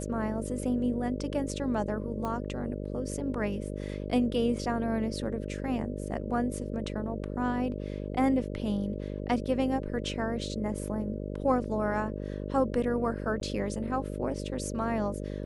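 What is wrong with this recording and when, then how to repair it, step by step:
buzz 50 Hz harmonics 12 -36 dBFS
2.25 pop -22 dBFS
13.4–13.41 gap 12 ms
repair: de-click; de-hum 50 Hz, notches 12; interpolate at 13.4, 12 ms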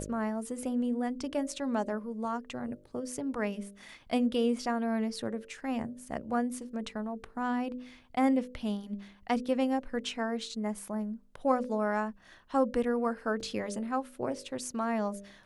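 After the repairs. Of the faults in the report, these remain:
none

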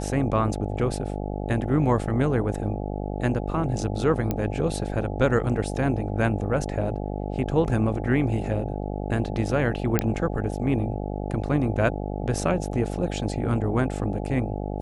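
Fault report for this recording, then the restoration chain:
buzz 50 Hz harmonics 17 -30 dBFS
4.31 pop -12 dBFS
9.99 pop -6 dBFS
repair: de-click; de-hum 50 Hz, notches 17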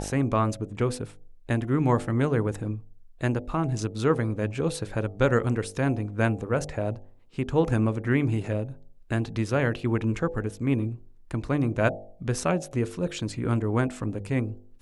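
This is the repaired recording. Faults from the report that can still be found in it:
4.31 pop

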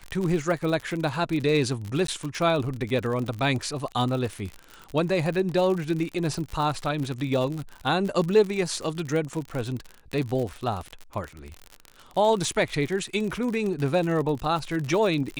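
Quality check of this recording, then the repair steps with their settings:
crackle 59/s -29 dBFS
2.07–2.08 gap 13 ms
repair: de-click; interpolate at 2.07, 13 ms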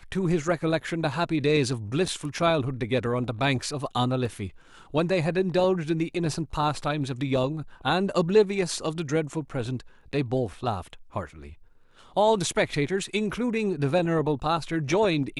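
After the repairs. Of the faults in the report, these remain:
none

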